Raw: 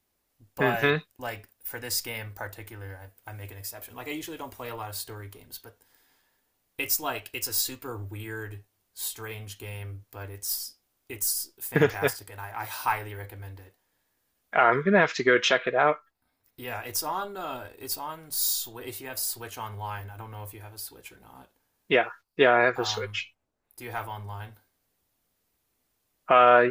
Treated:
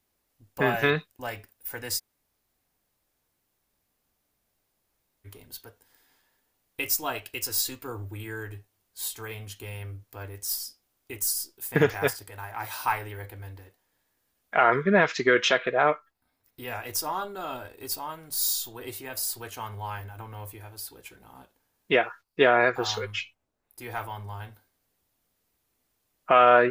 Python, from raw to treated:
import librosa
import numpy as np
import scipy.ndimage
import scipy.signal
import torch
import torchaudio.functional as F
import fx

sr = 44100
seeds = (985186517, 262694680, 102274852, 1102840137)

y = fx.edit(x, sr, fx.room_tone_fill(start_s=1.98, length_s=3.28, crossfade_s=0.04), tone=tone)